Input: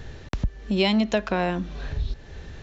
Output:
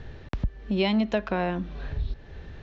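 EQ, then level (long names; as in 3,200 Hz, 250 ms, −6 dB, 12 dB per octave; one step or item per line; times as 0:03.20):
high-frequency loss of the air 170 metres
−2.0 dB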